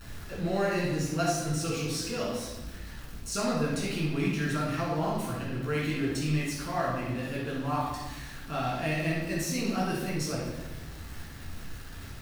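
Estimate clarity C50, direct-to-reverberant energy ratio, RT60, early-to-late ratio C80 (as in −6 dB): 0.0 dB, −5.5 dB, 1.2 s, 4.0 dB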